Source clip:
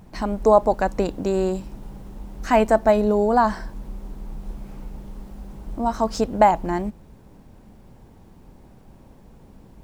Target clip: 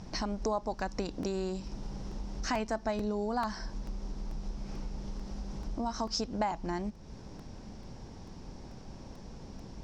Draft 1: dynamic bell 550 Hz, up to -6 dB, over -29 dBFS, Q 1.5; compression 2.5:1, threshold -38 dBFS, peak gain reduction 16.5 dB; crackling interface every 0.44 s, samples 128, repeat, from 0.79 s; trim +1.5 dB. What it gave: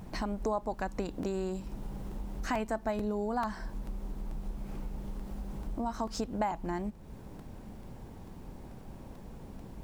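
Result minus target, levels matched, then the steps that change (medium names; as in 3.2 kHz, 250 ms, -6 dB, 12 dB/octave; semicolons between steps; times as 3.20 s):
4 kHz band -7.5 dB
add after dynamic bell: resonant low-pass 5.5 kHz, resonance Q 4.8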